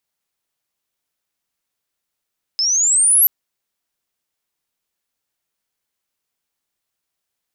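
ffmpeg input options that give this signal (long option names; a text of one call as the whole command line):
ffmpeg -f lavfi -i "aevalsrc='pow(10,(-15+6.5*t/0.68)/20)*sin(2*PI*5100*0.68/log(12000/5100)*(exp(log(12000/5100)*t/0.68)-1))':duration=0.68:sample_rate=44100" out.wav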